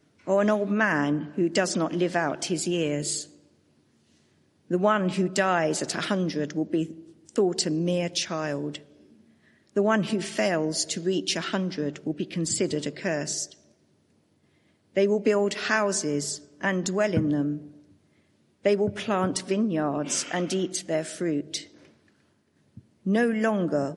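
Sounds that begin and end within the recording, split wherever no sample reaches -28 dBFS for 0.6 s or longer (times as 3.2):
4.71–8.76
9.76–13.45
14.97–17.56
18.65–21.58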